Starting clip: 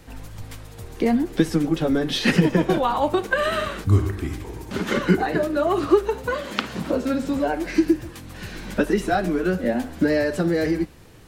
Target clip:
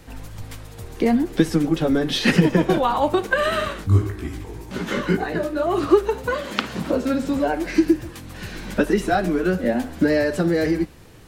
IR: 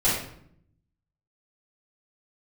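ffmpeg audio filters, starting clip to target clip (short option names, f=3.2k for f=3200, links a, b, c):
-filter_complex "[0:a]asplit=3[a][b][c];[a]afade=t=out:st=3.72:d=0.02[d];[b]flanger=delay=16:depth=4.4:speed=1.9,afade=t=in:st=3.72:d=0.02,afade=t=out:st=5.73:d=0.02[e];[c]afade=t=in:st=5.73:d=0.02[f];[d][e][f]amix=inputs=3:normalize=0,volume=1.5dB"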